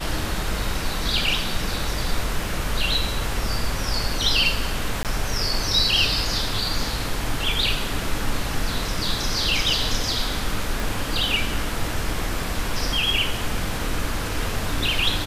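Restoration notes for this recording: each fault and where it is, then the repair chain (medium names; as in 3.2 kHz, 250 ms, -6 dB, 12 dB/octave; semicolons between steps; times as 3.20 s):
5.03–5.05 s: dropout 18 ms
10.80 s: pop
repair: de-click; interpolate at 5.03 s, 18 ms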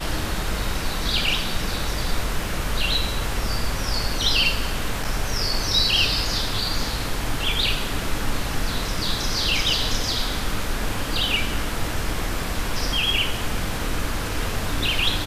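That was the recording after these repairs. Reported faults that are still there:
10.80 s: pop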